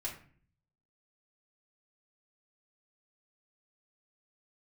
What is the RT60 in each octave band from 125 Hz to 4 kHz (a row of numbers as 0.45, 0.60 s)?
0.95, 0.75, 0.50, 0.45, 0.45, 0.35 s